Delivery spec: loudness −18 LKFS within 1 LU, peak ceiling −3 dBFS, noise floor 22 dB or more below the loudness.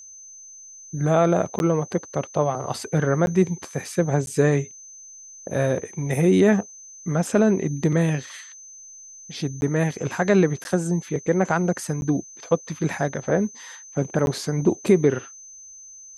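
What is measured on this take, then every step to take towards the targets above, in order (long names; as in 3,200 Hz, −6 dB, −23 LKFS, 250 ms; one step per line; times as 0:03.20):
number of dropouts 7; longest dropout 11 ms; interfering tone 6,200 Hz; level of the tone −41 dBFS; integrated loudness −23.0 LKFS; sample peak −5.0 dBFS; target loudness −18.0 LKFS
→ repair the gap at 0:01.59/0:03.26/0:04.26/0:09.61/0:10.64/0:12.01/0:14.26, 11 ms
notch filter 6,200 Hz, Q 30
level +5 dB
brickwall limiter −3 dBFS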